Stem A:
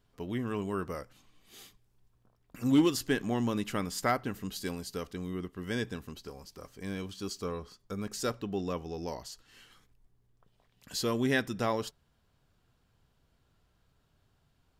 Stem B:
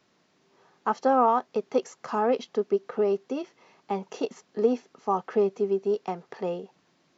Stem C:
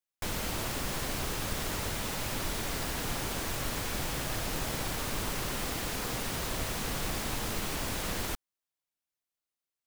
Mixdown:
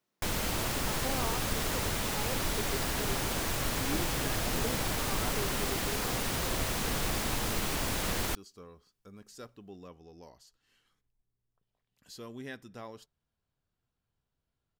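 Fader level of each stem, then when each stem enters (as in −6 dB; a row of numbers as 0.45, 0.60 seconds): −14.5, −17.5, +2.0 decibels; 1.15, 0.00, 0.00 seconds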